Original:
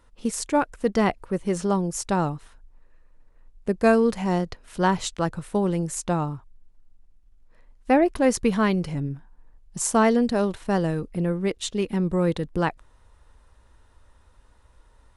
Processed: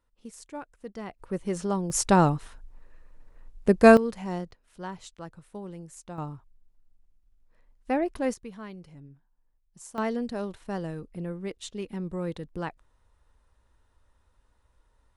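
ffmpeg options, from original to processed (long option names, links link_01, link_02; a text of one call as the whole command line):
ffmpeg -i in.wav -af "asetnsamples=nb_out_samples=441:pad=0,asendcmd='1.19 volume volume -5dB;1.9 volume volume 4dB;3.97 volume volume -9dB;4.51 volume volume -16.5dB;6.18 volume volume -8dB;8.34 volume volume -20dB;9.98 volume volume -10dB',volume=-17.5dB" out.wav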